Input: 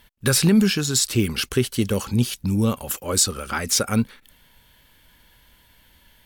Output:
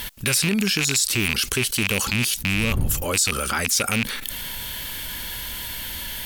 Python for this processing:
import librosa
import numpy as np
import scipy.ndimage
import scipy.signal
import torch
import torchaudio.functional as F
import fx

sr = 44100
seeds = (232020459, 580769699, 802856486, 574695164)

y = fx.rattle_buzz(x, sr, strikes_db=-27.0, level_db=-10.0)
y = fx.dmg_wind(y, sr, seeds[0], corner_hz=81.0, level_db=-24.0, at=(2.52, 3.1), fade=0.02)
y = fx.high_shelf(y, sr, hz=2600.0, db=9.5)
y = fx.env_flatten(y, sr, amount_pct=70)
y = y * 10.0 ** (-11.5 / 20.0)